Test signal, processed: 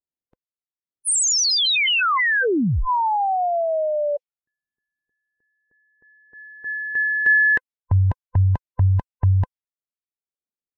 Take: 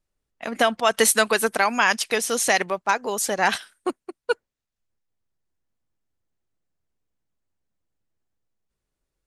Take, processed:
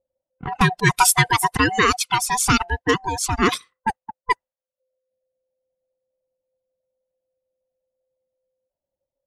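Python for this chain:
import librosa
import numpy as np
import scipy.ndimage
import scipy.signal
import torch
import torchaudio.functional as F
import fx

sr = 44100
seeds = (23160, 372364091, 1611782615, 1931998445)

y = fx.band_swap(x, sr, width_hz=500)
y = fx.env_lowpass(y, sr, base_hz=450.0, full_db=-20.0)
y = fx.dereverb_blind(y, sr, rt60_s=0.77)
y = y * librosa.db_to_amplitude(3.0)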